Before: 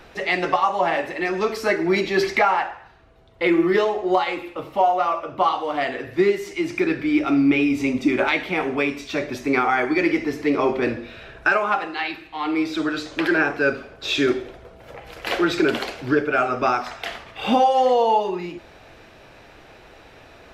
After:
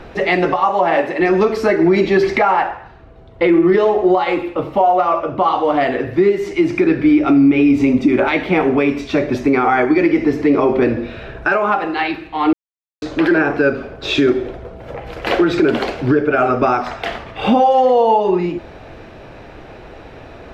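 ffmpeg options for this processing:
-filter_complex "[0:a]asettb=1/sr,asplit=3[s0][s1][s2];[s0]atrim=end=0.704[s3];[s1]atrim=start=0.7:end=1.2,asetpts=PTS-STARTPTS,afade=t=in:d=0.004:c=qsin,afade=t=out:st=0.496:d=0.004:c=qsin,highpass=f=220:p=1[s4];[s2]atrim=start=1.196[s5];[s3][s4]acrossfade=d=0.004:c1=hsin:c2=qsin[s6];[s6][s5]acrossfade=d=0.004:c1=qsin:c2=hsin,asplit=3[s7][s8][s9];[s7]atrim=end=12.53,asetpts=PTS-STARTPTS,afade=t=out:st=12.526:d=0.004:c=hsin[s10];[s8]atrim=start=12.53:end=13.02,asetpts=PTS-STARTPTS,volume=0[s11];[s9]atrim=start=13.02,asetpts=PTS-STARTPTS,afade=t=in:d=0.004:c=hsin[s12];[s10][s11][s12]concat=n=3:v=0:a=1,lowpass=f=4000:p=1,tiltshelf=f=880:g=4,alimiter=limit=0.2:level=0:latency=1:release=158,volume=2.82"

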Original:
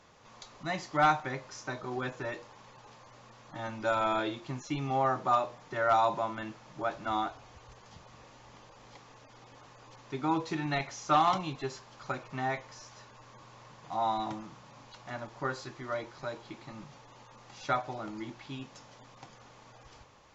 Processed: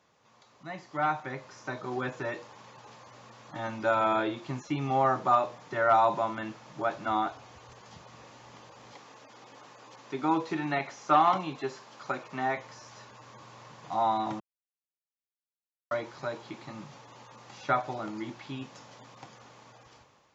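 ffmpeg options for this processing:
-filter_complex "[0:a]asettb=1/sr,asplit=3[s0][s1][s2];[s0]atrim=end=8.924[s3];[s1]atrim=start=8.92:end=12.57,asetpts=PTS-STARTPTS,afade=t=in:d=0.004:c=qsin,afade=t=out:st=3.646:d=0.004:c=qsin,highpass=180[s4];[s2]atrim=start=12.566[s5];[s3][s4]acrossfade=d=0.004:c1=hsin:c2=qsin[s6];[s6][s5]acrossfade=d=0.004:c1=qsin:c2=hsin,asplit=3[s7][s8][s9];[s7]atrim=end=14.4,asetpts=PTS-STARTPTS,afade=t=out:st=14.396:d=0.004:c=hsin[s10];[s8]atrim=start=14.4:end=15.91,asetpts=PTS-STARTPTS,volume=0[s11];[s9]atrim=start=15.91,asetpts=PTS-STARTPTS,afade=t=in:d=0.004:c=hsin[s12];[s10][s11][s12]concat=n=3:v=0:a=1,acrossover=split=2800[s13][s14];[s14]acompressor=threshold=0.00224:ratio=4:attack=1:release=60[s15];[s13][s15]amix=inputs=2:normalize=0,highpass=100,dynaudnorm=f=530:g=5:m=3.55,volume=0.422"

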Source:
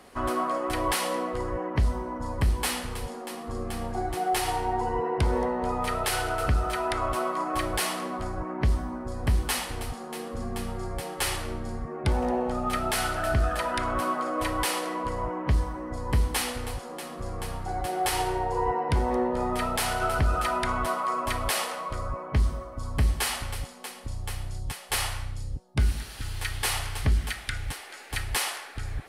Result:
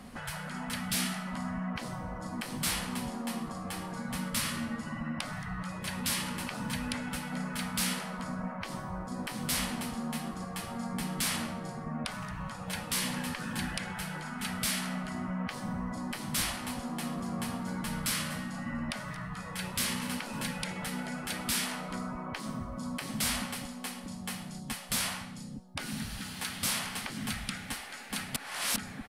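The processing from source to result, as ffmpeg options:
-filter_complex "[0:a]asplit=3[s0][s1][s2];[s0]afade=t=out:st=17.11:d=0.02[s3];[s1]aecho=1:1:242:0.133,afade=t=in:st=17.11:d=0.02,afade=t=out:st=20.66:d=0.02[s4];[s2]afade=t=in:st=20.66:d=0.02[s5];[s3][s4][s5]amix=inputs=3:normalize=0,asplit=3[s6][s7][s8];[s6]atrim=end=28.362[s9];[s7]atrim=start=28.358:end=28.762,asetpts=PTS-STARTPTS,areverse[s10];[s8]atrim=start=28.758[s11];[s9][s10]acrossfade=d=0.004:c1=hsin:c2=hsin[s12];[s12][s11]acrossfade=d=0.004:c1=hsin:c2=hsin,afftfilt=real='re*lt(hypot(re,im),0.0708)':imag='im*lt(hypot(re,im),0.0708)':win_size=1024:overlap=0.75,lowshelf=f=280:t=q:w=3:g=7.5"

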